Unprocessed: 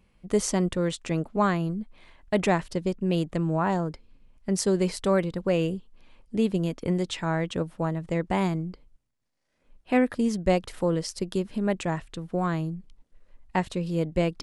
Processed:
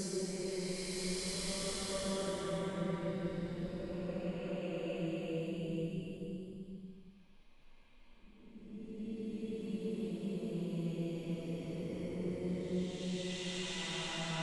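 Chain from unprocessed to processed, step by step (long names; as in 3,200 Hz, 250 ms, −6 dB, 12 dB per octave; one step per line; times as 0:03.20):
output level in coarse steps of 20 dB
extreme stretch with random phases 5.7×, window 0.50 s, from 0:04.70
level +2 dB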